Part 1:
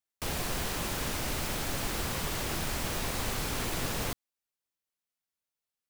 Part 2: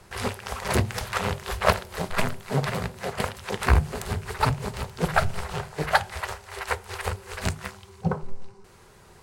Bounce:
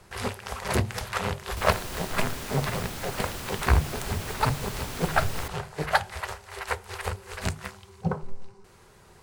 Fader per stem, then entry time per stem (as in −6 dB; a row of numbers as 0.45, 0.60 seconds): −3.5, −2.0 decibels; 1.35, 0.00 seconds